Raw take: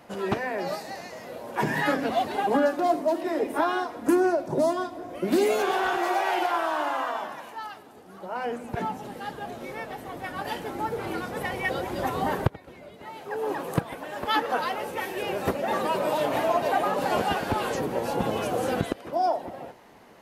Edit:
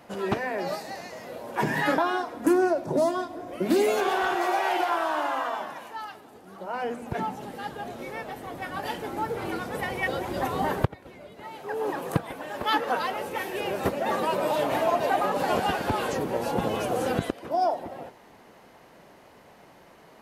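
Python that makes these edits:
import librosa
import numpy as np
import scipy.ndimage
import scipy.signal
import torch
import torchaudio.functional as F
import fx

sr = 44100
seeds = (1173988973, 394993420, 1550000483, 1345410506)

y = fx.edit(x, sr, fx.cut(start_s=1.98, length_s=1.62), tone=tone)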